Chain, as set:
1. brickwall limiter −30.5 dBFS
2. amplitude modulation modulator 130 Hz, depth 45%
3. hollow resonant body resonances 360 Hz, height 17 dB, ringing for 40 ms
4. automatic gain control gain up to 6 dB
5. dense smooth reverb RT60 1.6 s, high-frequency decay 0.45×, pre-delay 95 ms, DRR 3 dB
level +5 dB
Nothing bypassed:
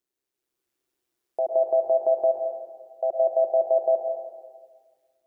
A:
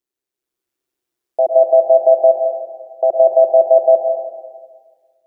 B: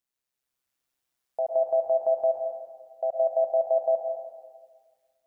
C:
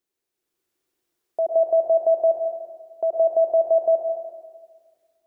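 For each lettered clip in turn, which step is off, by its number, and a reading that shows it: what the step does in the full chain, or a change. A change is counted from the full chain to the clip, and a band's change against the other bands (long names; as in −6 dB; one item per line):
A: 1, average gain reduction 10.5 dB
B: 3, change in integrated loudness −2.5 LU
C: 2, change in crest factor −2.0 dB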